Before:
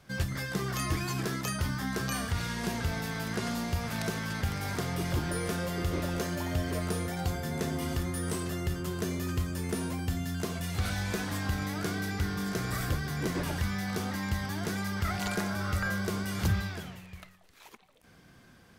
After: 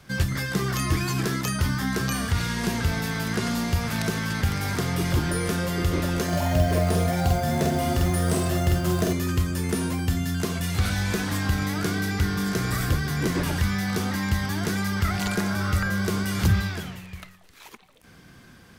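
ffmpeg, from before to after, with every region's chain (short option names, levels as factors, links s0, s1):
-filter_complex "[0:a]asettb=1/sr,asplit=3[s0][s1][s2];[s0]atrim=end=6.284[s3];[s1]atrim=start=6.28:end=9.13,asetpts=PTS-STARTPTS,afade=t=in:d=0.004:c=qsin,afade=t=out:st=2.846:d=0.004:c=qsin,equalizer=f=670:w=4:g=12.5,asplit=2[s4][s5];[s5]adelay=47,volume=0.75[s6];[s4][s6]amix=inputs=2:normalize=0,atrim=end_sample=125685,acrusher=bits=6:mode=log:mix=0:aa=0.000001[s7];[s2]atrim=start=9.126[s8];[s3][s7]acrossfade=d=0.004:c1=hsin:c2=qsin[s9];[s9][s8]acrossfade=d=0.004:c1=qsin:c2=hsin,equalizer=f=640:t=o:w=0.97:g=-3.5,acrossover=split=490[s10][s11];[s11]acompressor=threshold=0.02:ratio=6[s12];[s10][s12]amix=inputs=2:normalize=0,volume=2.37"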